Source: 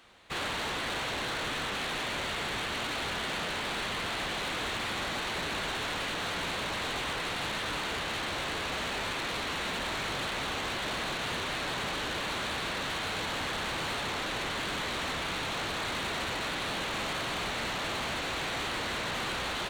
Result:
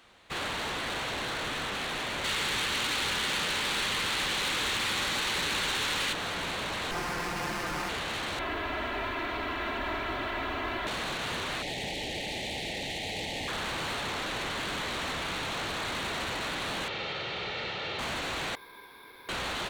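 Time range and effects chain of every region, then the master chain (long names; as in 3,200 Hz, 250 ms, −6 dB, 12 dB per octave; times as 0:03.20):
0:02.24–0:06.13: high-shelf EQ 2,100 Hz +8 dB + notch filter 680 Hz, Q 7.2
0:06.91–0:07.89: parametric band 570 Hz −6 dB 0.3 octaves + comb filter 5.7 ms, depth 98% + windowed peak hold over 9 samples
0:08.39–0:10.87: low-pass filter 2,300 Hz + comb filter 3 ms, depth 85% + noise that follows the level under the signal 32 dB
0:11.62–0:13.48: linear-phase brick-wall band-stop 900–1,800 Hz + highs frequency-modulated by the lows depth 0.19 ms
0:16.88–0:17.99: loudspeaker in its box 100–4,500 Hz, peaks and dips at 280 Hz −9 dB, 1,000 Hz −9 dB, 1,600 Hz −5 dB + comb filter 2.2 ms, depth 38%
0:18.55–0:19.29: formant filter u + ring modulation 1,300 Hz + bad sample-rate conversion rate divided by 3×, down none, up hold
whole clip: no processing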